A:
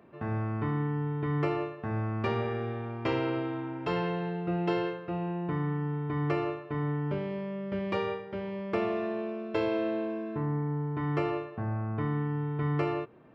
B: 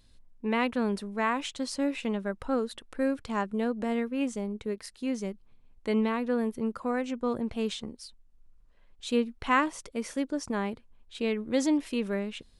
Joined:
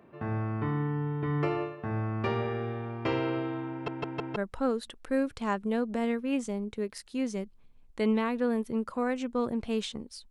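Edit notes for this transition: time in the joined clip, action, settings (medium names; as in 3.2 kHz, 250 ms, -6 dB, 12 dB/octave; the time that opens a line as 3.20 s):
A
3.72 s: stutter in place 0.16 s, 4 plays
4.36 s: go over to B from 2.24 s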